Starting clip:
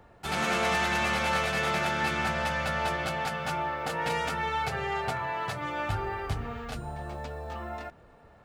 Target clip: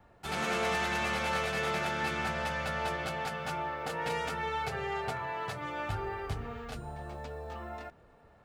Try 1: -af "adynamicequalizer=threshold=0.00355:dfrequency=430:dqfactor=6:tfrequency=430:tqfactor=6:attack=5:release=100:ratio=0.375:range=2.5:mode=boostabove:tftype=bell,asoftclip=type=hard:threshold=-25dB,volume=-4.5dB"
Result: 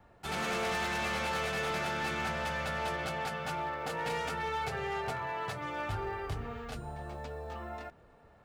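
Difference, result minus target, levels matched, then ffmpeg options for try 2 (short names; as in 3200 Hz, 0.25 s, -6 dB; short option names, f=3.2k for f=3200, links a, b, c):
hard clip: distortion +25 dB
-af "adynamicequalizer=threshold=0.00355:dfrequency=430:dqfactor=6:tfrequency=430:tqfactor=6:attack=5:release=100:ratio=0.375:range=2.5:mode=boostabove:tftype=bell,asoftclip=type=hard:threshold=-17.5dB,volume=-4.5dB"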